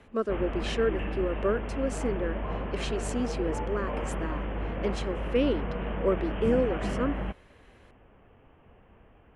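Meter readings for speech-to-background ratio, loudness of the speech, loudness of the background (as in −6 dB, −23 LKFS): 2.5 dB, −31.5 LKFS, −34.0 LKFS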